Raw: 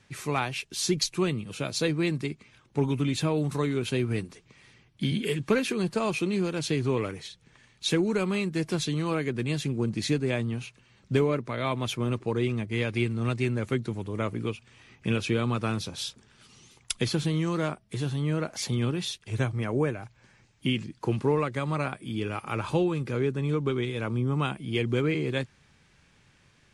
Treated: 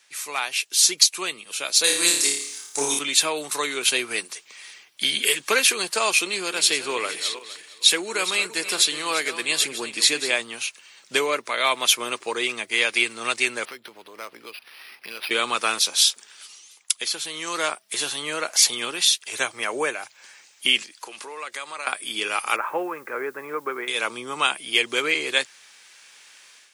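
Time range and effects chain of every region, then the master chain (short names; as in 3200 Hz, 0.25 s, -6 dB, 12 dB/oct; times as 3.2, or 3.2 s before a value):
1.84–2.99 resonant high shelf 4300 Hz +13 dB, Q 1.5 + flutter echo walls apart 4.9 m, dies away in 0.63 s
6.24–10.36 regenerating reverse delay 0.23 s, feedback 42%, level -12 dB + notch 6100 Hz, Q 9.1
13.65–15.31 compressor 3:1, threshold -40 dBFS + decimation joined by straight lines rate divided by 6×
20.82–21.87 low shelf 240 Hz -11.5 dB + compressor 2.5:1, threshold -42 dBFS
22.56–23.88 steep low-pass 1900 Hz + low shelf 220 Hz -9 dB + requantised 12-bit, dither none
whole clip: HPF 460 Hz 12 dB/oct; tilt +4 dB/oct; AGC gain up to 10 dB; gain -1 dB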